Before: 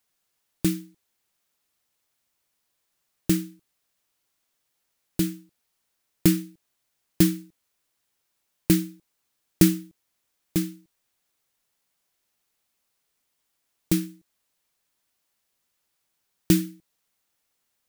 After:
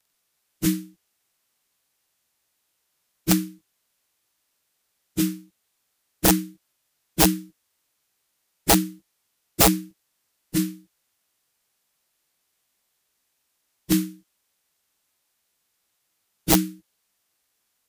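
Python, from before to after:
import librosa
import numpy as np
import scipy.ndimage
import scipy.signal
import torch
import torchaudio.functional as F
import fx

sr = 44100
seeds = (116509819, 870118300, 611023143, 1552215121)

y = fx.partial_stretch(x, sr, pct=92)
y = (np.mod(10.0 ** (14.0 / 20.0) * y + 1.0, 2.0) - 1.0) / 10.0 ** (14.0 / 20.0)
y = F.gain(torch.from_numpy(y), 5.0).numpy()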